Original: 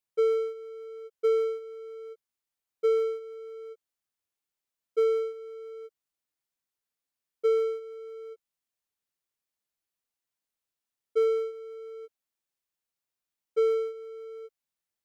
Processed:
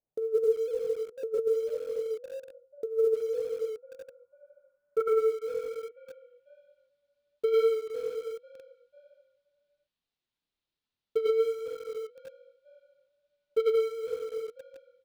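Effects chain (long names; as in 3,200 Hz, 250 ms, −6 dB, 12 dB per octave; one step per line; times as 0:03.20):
on a send: echo with shifted repeats 496 ms, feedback 43%, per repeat +43 Hz, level −21 dB
on the sum: multi-voice chorus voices 2, 1.1 Hz, delay 27 ms, depth 3.9 ms
low-pass filter sweep 650 Hz → 3,800 Hz, 0:03.30–0:06.88
dynamic equaliser 1,100 Hz, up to −5 dB, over −52 dBFS, Q 2.8
in parallel at −6 dB: bit reduction 8 bits
on the sum: compressor whose output falls as the input rises −26 dBFS, ratio −0.5
low-shelf EQ 440 Hz +10.5 dB
level −3 dB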